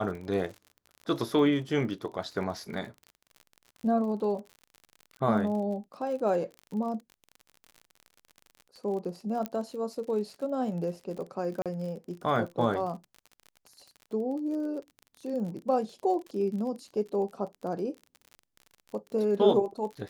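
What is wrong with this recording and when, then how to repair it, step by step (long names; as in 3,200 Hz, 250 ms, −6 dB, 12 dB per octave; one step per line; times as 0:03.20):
surface crackle 45 per second −38 dBFS
0:09.46: click −18 dBFS
0:11.62–0:11.66: drop-out 37 ms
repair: click removal
repair the gap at 0:11.62, 37 ms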